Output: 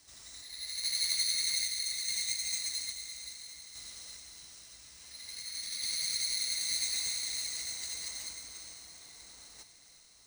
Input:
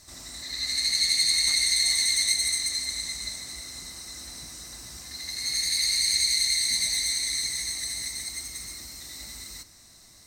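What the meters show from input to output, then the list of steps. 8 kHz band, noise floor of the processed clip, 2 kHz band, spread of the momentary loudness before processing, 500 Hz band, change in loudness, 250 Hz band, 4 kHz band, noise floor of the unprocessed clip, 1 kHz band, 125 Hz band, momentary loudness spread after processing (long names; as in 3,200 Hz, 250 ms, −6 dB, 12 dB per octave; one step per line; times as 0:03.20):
−8.5 dB, −58 dBFS, −11.0 dB, 18 LU, can't be measured, −9.0 dB, −13.0 dB, −9.5 dB, −53 dBFS, −8.0 dB, below −10 dB, 20 LU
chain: guitar amp tone stack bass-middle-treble 5-5-5
notch filter 6,700 Hz, Q 5.9
sample-and-hold tremolo 2.4 Hz
feedback delay with all-pass diffusion 656 ms, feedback 47%, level −13.5 dB
bad sample-rate conversion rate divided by 3×, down none, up hold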